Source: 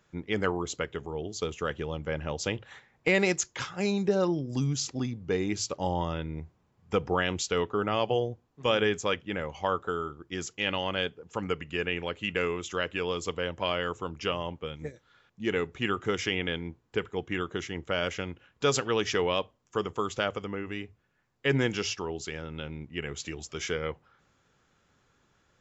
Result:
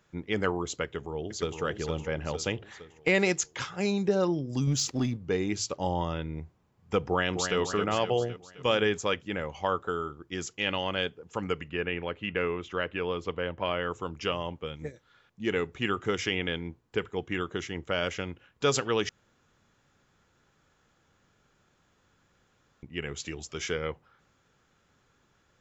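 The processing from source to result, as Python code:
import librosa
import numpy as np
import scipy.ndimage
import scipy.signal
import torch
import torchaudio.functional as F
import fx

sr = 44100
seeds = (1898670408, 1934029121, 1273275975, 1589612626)

y = fx.echo_throw(x, sr, start_s=0.84, length_s=0.77, ms=460, feedback_pct=50, wet_db=-5.5)
y = fx.leveller(y, sr, passes=1, at=(4.67, 5.17))
y = fx.echo_throw(y, sr, start_s=7.07, length_s=0.51, ms=260, feedback_pct=55, wet_db=-6.5)
y = fx.lowpass(y, sr, hz=2700.0, slope=12, at=(11.68, 13.9), fade=0.02)
y = fx.edit(y, sr, fx.room_tone_fill(start_s=19.09, length_s=3.74), tone=tone)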